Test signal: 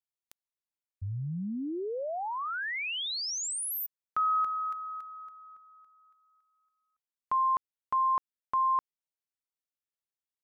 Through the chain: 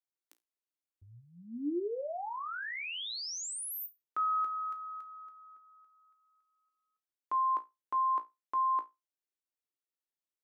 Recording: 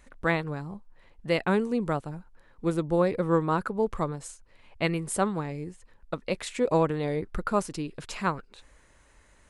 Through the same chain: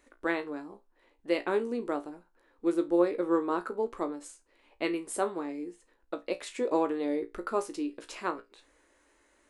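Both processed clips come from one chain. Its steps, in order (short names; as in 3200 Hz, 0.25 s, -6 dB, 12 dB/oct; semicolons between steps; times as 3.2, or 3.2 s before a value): resonant low shelf 220 Hz -11.5 dB, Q 3; resonator 58 Hz, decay 0.2 s, harmonics all, mix 80%; gain -1 dB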